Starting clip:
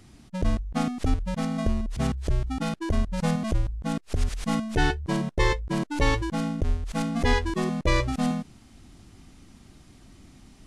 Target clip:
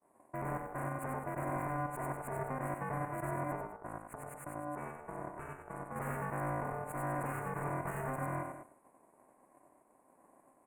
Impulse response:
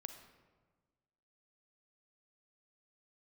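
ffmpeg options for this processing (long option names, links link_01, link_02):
-filter_complex "[0:a]highpass=160,agate=range=-33dB:threshold=-45dB:ratio=3:detection=peak,equalizer=frequency=810:width=0.79:gain=-12.5,alimiter=level_in=2dB:limit=-24dB:level=0:latency=1:release=161,volume=-2dB,asettb=1/sr,asplit=3[link_01][link_02][link_03];[link_01]atrim=end=3.554[link_04];[link_02]atrim=start=3.55:end=5.96,asetpts=PTS-STARTPTS,afade=type=in:duration=0.004:curve=qsin,afade=type=out:start_time=2.406:duration=0.004:curve=qsin,acompressor=threshold=-50dB:ratio=2.5[link_05];[link_03]atrim=start=5.956[link_06];[link_04][link_05]acrossfade=duration=0.004:curve1=hsin:curve2=qsin[link_07];[link_07][link_06]acrossfade=duration=0.004:curve1=qsin:curve2=hsin,aeval=exprs='val(0)*sin(2*PI*660*n/s)':channel_layout=same,aeval=exprs='(tanh(224*val(0)+0.75)-tanh(0.75))/224':channel_layout=same,aeval=exprs='val(0)*sin(2*PI*140*n/s)':channel_layout=same,asuperstop=centerf=4300:order=8:qfactor=0.67,aecho=1:1:93.29|204.1:0.562|0.251,volume=12.5dB"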